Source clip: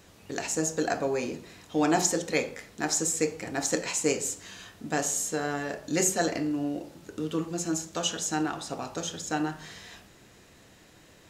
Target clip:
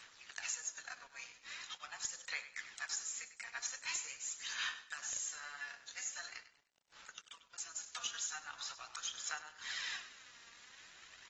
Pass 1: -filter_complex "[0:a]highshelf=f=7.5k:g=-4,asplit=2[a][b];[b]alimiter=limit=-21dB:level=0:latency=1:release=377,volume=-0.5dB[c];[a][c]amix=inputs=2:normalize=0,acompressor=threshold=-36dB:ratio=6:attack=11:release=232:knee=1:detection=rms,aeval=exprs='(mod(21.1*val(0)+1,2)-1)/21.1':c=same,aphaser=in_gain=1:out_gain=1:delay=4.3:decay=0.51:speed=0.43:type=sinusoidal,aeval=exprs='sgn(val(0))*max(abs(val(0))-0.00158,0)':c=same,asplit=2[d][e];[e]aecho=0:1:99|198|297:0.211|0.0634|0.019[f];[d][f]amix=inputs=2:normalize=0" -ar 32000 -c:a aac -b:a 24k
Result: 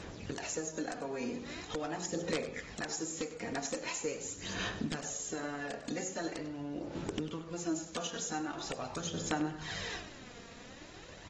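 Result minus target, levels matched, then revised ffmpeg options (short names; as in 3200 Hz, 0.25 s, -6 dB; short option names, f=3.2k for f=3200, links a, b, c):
1000 Hz band +5.0 dB
-filter_complex "[0:a]highshelf=f=7.5k:g=-4,asplit=2[a][b];[b]alimiter=limit=-21dB:level=0:latency=1:release=377,volume=-0.5dB[c];[a][c]amix=inputs=2:normalize=0,acompressor=threshold=-36dB:ratio=6:attack=11:release=232:knee=1:detection=rms,highpass=f=1.2k:w=0.5412,highpass=f=1.2k:w=1.3066,aeval=exprs='(mod(21.1*val(0)+1,2)-1)/21.1':c=same,aphaser=in_gain=1:out_gain=1:delay=4.3:decay=0.51:speed=0.43:type=sinusoidal,aeval=exprs='sgn(val(0))*max(abs(val(0))-0.00158,0)':c=same,asplit=2[d][e];[e]aecho=0:1:99|198|297:0.211|0.0634|0.019[f];[d][f]amix=inputs=2:normalize=0" -ar 32000 -c:a aac -b:a 24k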